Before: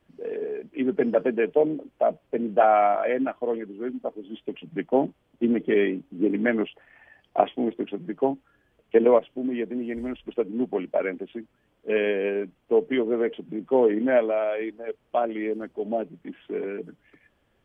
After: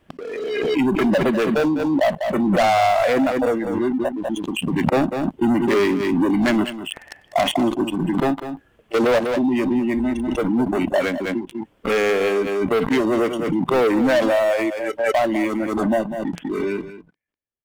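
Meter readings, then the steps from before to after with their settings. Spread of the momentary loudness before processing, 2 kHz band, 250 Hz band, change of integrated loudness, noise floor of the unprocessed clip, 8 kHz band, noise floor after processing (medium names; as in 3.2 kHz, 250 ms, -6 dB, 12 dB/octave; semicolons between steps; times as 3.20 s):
13 LU, +8.5 dB, +8.0 dB, +5.0 dB, -68 dBFS, no reading, -59 dBFS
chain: waveshaping leveller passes 5; spectral noise reduction 15 dB; on a send: delay 198 ms -13 dB; on the sum: swell ahead of each attack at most 25 dB/s; trim -7.5 dB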